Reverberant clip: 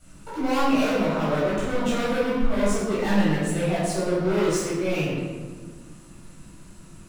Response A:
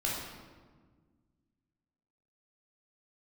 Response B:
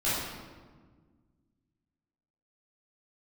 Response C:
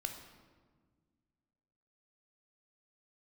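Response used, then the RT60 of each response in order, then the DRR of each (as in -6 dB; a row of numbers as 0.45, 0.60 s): B; 1.5, 1.5, 1.6 s; -4.5, -11.5, 5.0 dB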